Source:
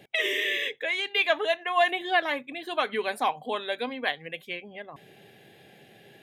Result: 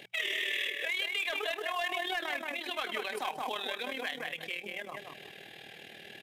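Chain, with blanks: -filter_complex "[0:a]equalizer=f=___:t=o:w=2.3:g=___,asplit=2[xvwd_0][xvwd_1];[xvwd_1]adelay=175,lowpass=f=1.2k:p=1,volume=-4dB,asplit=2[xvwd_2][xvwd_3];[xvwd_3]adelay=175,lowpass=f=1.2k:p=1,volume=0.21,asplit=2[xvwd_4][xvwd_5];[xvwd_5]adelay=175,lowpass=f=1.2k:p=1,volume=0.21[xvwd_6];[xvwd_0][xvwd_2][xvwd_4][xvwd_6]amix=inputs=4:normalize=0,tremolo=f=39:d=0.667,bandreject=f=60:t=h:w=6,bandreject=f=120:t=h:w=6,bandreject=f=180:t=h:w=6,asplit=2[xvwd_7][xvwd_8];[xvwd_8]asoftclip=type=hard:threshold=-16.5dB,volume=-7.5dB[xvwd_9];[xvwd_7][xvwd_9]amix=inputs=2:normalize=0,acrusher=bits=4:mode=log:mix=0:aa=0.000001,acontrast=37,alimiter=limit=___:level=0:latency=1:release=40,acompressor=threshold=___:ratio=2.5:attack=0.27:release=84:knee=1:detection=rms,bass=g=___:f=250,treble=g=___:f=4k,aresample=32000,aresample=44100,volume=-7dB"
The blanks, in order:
2.9k, 10, -8dB, -25dB, -3, 0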